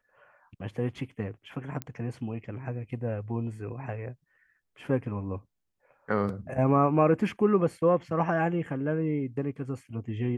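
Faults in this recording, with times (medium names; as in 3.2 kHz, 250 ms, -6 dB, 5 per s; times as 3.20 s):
1.82 s: pop -18 dBFS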